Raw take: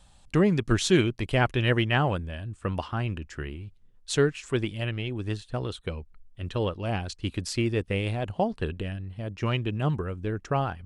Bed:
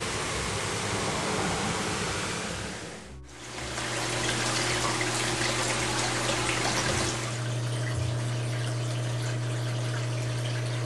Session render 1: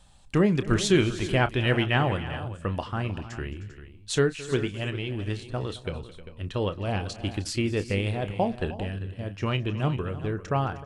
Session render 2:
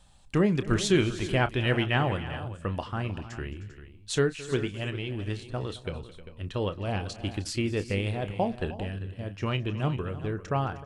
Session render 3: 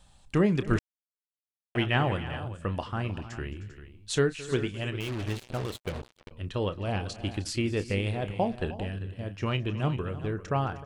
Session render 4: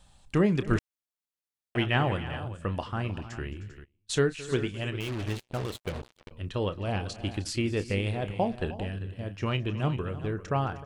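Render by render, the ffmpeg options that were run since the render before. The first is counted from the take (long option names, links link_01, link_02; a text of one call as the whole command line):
ffmpeg -i in.wav -filter_complex "[0:a]asplit=2[link_01][link_02];[link_02]adelay=30,volume=-12.5dB[link_03];[link_01][link_03]amix=inputs=2:normalize=0,aecho=1:1:217|310|396:0.112|0.168|0.2" out.wav
ffmpeg -i in.wav -af "volume=-2dB" out.wav
ffmpeg -i in.wav -filter_complex "[0:a]asettb=1/sr,asplit=3[link_01][link_02][link_03];[link_01]atrim=end=5.004[link_04];[link_02]atrim=start=5:end=6.31,asetpts=PTS-STARTPTS,afade=type=in:duration=0.004:curve=qsin,afade=type=out:start_time=1.306:duration=0.004:curve=qsin,acrusher=bits=5:mix=0:aa=0.5[link_05];[link_03]atrim=start=6.306[link_06];[link_04][link_05]acrossfade=duration=0.004:curve1=hsin:curve2=qsin[link_07];[link_07][link_06]acrossfade=duration=0.004:curve1=qsin:curve2=hsin,asplit=3[link_08][link_09][link_10];[link_08]atrim=end=0.79,asetpts=PTS-STARTPTS,afade=type=out:start_time=0.786:duration=0.004:curve=hsin[link_11];[link_09]atrim=start=0.79:end=1.75,asetpts=PTS-STARTPTS,volume=0[link_12];[link_10]atrim=start=1.75,asetpts=PTS-STARTPTS,afade=type=in:duration=0.004:curve=hsin[link_13];[link_11][link_12][link_13]concat=n=3:v=0:a=1" out.wav
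ffmpeg -i in.wav -filter_complex "[0:a]asplit=3[link_01][link_02][link_03];[link_01]afade=type=out:start_time=3.83:duration=0.02[link_04];[link_02]agate=range=-23dB:threshold=-43dB:ratio=16:release=100:detection=peak,afade=type=in:start_time=3.83:duration=0.02,afade=type=out:start_time=5.61:duration=0.02[link_05];[link_03]afade=type=in:start_time=5.61:duration=0.02[link_06];[link_04][link_05][link_06]amix=inputs=3:normalize=0" out.wav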